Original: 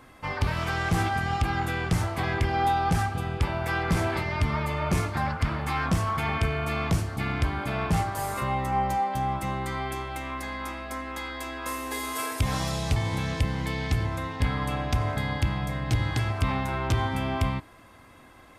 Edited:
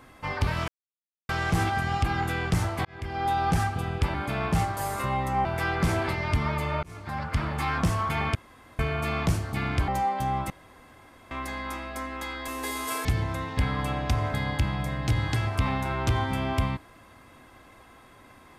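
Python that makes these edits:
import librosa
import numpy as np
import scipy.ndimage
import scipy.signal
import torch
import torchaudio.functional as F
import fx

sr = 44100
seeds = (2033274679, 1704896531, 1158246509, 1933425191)

y = fx.edit(x, sr, fx.insert_silence(at_s=0.68, length_s=0.61),
    fx.fade_in_span(start_s=2.24, length_s=0.59),
    fx.fade_in_span(start_s=4.91, length_s=0.58),
    fx.insert_room_tone(at_s=6.43, length_s=0.44),
    fx.move(start_s=7.52, length_s=1.31, to_s=3.53),
    fx.room_tone_fill(start_s=9.45, length_s=0.81),
    fx.cut(start_s=11.43, length_s=0.33),
    fx.cut(start_s=12.33, length_s=1.55), tone=tone)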